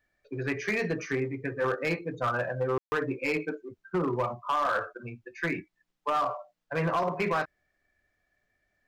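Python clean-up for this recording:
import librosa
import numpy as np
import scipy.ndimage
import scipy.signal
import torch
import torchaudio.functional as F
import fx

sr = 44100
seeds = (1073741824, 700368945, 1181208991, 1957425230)

y = fx.fix_declip(x, sr, threshold_db=-22.0)
y = fx.fix_ambience(y, sr, seeds[0], print_start_s=8.11, print_end_s=8.61, start_s=2.78, end_s=2.92)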